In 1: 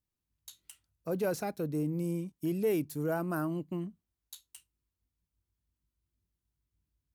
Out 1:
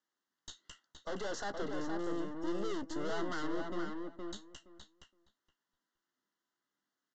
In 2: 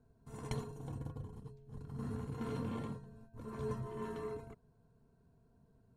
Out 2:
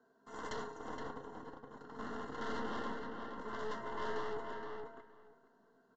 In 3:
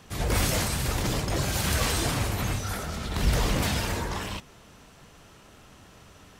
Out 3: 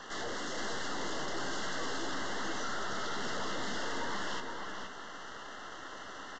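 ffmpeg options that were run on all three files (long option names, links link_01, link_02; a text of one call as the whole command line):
ffmpeg -i in.wav -filter_complex "[0:a]highpass=frequency=250:width=0.5412,highpass=frequency=250:width=1.3066,equalizer=frequency=1500:width=0.82:gain=9.5,acrossover=split=450[link_01][link_02];[link_02]acompressor=threshold=-30dB:ratio=6[link_03];[link_01][link_03]amix=inputs=2:normalize=0,aeval=exprs='(tanh(158*val(0)+0.8)-tanh(0.8))/158':channel_layout=same,asuperstop=centerf=2400:order=8:qfactor=3.6,asplit=2[link_04][link_05];[link_05]adelay=15,volume=-13dB[link_06];[link_04][link_06]amix=inputs=2:normalize=0,asplit=2[link_07][link_08];[link_08]adelay=469,lowpass=frequency=3000:poles=1,volume=-4dB,asplit=2[link_09][link_10];[link_10]adelay=469,lowpass=frequency=3000:poles=1,volume=0.16,asplit=2[link_11][link_12];[link_12]adelay=469,lowpass=frequency=3000:poles=1,volume=0.16[link_13];[link_07][link_09][link_11][link_13]amix=inputs=4:normalize=0,aresample=16000,aresample=44100,volume=6.5dB" out.wav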